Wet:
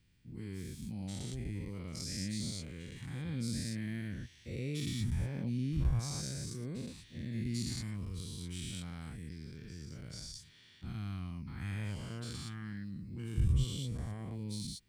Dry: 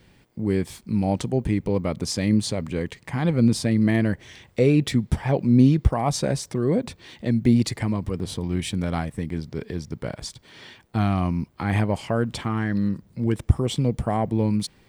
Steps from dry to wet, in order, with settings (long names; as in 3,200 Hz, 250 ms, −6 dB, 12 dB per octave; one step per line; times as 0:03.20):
every bin's largest magnitude spread in time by 240 ms
guitar amp tone stack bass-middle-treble 6-0-2
level −4.5 dB